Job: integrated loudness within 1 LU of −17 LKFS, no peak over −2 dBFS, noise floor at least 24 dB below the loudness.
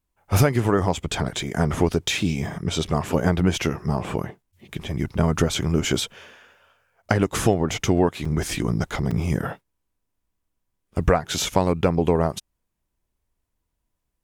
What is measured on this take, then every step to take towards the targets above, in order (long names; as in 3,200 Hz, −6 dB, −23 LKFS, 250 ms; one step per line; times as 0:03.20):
number of dropouts 2; longest dropout 4.4 ms; integrated loudness −23.5 LKFS; sample peak −4.0 dBFS; target loudness −17.0 LKFS
→ repair the gap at 0:08.25/0:09.11, 4.4 ms
level +6.5 dB
brickwall limiter −2 dBFS